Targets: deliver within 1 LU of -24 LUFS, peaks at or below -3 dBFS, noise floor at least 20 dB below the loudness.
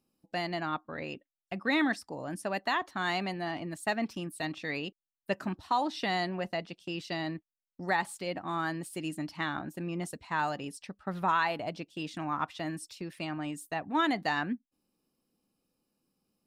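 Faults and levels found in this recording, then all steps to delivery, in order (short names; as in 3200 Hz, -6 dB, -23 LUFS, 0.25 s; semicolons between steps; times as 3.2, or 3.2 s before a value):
loudness -34.0 LUFS; peak -17.0 dBFS; loudness target -24.0 LUFS
-> gain +10 dB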